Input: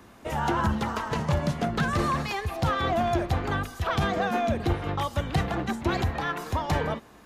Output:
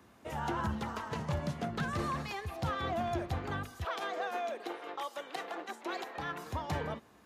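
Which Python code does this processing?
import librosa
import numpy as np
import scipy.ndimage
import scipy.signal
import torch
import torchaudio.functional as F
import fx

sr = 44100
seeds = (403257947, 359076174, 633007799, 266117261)

y = fx.highpass(x, sr, hz=fx.steps((0.0, 58.0), (3.85, 360.0), (6.18, 63.0)), slope=24)
y = F.gain(torch.from_numpy(y), -9.0).numpy()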